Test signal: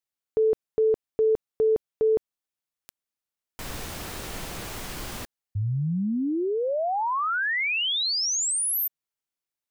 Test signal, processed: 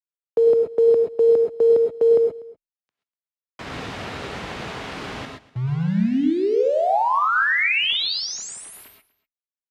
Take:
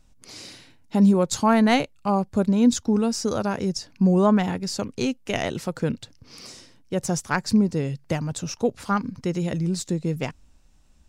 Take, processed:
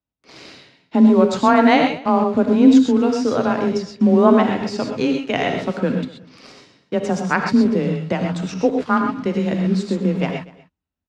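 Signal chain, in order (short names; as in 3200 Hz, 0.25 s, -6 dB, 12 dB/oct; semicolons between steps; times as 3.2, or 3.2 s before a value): gate with hold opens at -45 dBFS, closes at -52 dBFS, hold 16 ms, range -24 dB; HPF 130 Hz 6 dB/oct; added harmonics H 4 -42 dB, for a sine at -7 dBFS; frequency shift +21 Hz; in parallel at -4 dB: bit-crush 6-bit; on the sum: LPF 3200 Hz 12 dB/oct; on a send: echo 0.244 s -21.5 dB; on the sum: non-linear reverb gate 0.15 s rising, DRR 3 dB; gain +1 dB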